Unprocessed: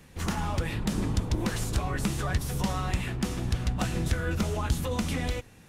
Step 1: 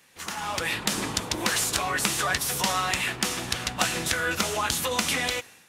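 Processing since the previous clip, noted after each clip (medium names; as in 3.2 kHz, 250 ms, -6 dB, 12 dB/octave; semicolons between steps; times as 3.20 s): high-pass 1.4 kHz 6 dB/octave; level rider gain up to 11 dB; trim +1.5 dB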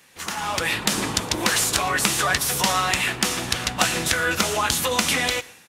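delay 117 ms -23 dB; trim +4.5 dB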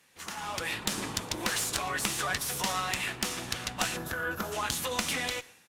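time-frequency box 3.97–4.52 s, 1.8–11 kHz -12 dB; valve stage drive 6 dB, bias 0.75; trim -5.5 dB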